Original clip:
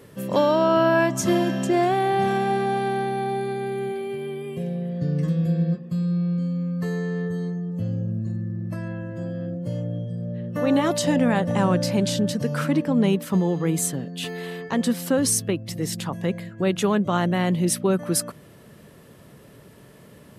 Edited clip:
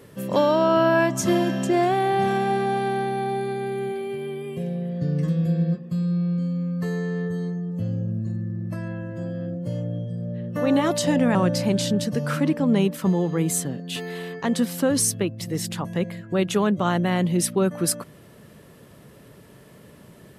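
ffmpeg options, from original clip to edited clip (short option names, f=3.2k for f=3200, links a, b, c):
-filter_complex "[0:a]asplit=2[a][b];[a]atrim=end=11.352[c];[b]atrim=start=11.628[d];[c][d]acrossfade=d=0.004:c1=hsin:c2=hsin"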